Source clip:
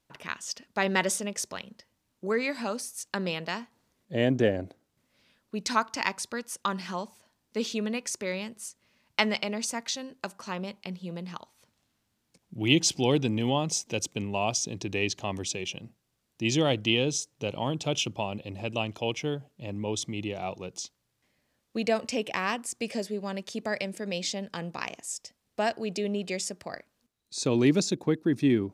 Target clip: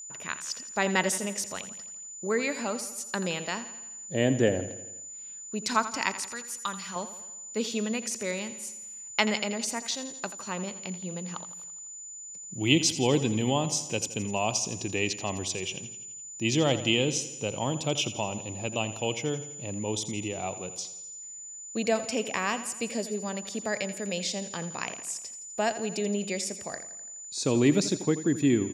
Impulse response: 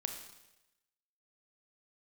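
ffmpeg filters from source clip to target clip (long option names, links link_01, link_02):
-filter_complex "[0:a]asettb=1/sr,asplit=3[link_01][link_02][link_03];[link_01]atrim=end=6.224[link_04];[link_02]atrim=start=6.22:end=6.96,asetpts=PTS-STARTPTS,afade=type=in:duration=0.004:curve=qsin,afade=type=out:start_time=0.736:duration=0.004:curve=qsin,equalizer=frequency=350:width_type=o:width=2.7:gain=-10.5[link_05];[link_03]atrim=start=6.956[link_06];[link_04][link_05]acrossfade=duration=0.004:curve1=hsin:curve2=qsin[link_07];[link_07][link_06]acrossfade=duration=0.004:curve1=qsin:curve2=hsin,aecho=1:1:84|168|252|336|420|504:0.211|0.12|0.0687|0.0391|0.0223|0.0127,aeval=exprs='val(0)+0.01*sin(2*PI*7000*n/s)':channel_layout=same"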